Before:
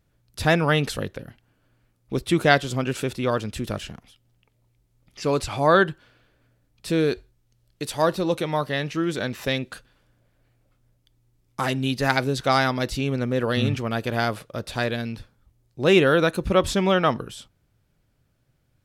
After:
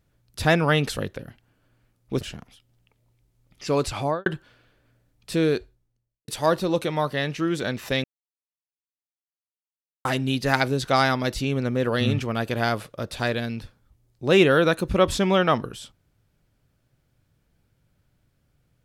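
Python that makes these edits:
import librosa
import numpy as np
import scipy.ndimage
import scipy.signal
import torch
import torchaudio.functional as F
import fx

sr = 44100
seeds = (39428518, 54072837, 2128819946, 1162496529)

y = fx.studio_fade_out(x, sr, start_s=5.54, length_s=0.28)
y = fx.studio_fade_out(y, sr, start_s=7.0, length_s=0.84)
y = fx.edit(y, sr, fx.cut(start_s=2.21, length_s=1.56),
    fx.silence(start_s=9.6, length_s=2.01), tone=tone)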